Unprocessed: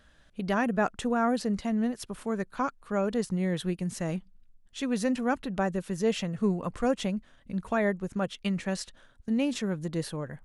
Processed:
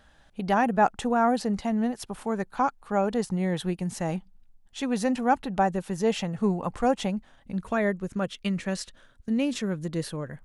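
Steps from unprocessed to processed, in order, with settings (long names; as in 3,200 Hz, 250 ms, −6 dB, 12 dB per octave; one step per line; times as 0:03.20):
parametric band 820 Hz +10.5 dB 0.36 octaves, from 0:07.56 −3 dB
level +1.5 dB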